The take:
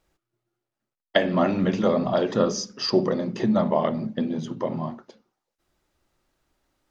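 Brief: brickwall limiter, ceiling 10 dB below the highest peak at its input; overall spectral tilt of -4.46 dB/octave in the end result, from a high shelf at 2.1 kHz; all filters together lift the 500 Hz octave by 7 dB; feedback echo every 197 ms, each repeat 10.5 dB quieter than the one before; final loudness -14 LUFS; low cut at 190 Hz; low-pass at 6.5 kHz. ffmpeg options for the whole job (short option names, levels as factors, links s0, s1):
-af "highpass=190,lowpass=6500,equalizer=f=500:t=o:g=8.5,highshelf=f=2100:g=4,alimiter=limit=0.299:level=0:latency=1,aecho=1:1:197|394|591:0.299|0.0896|0.0269,volume=2.66"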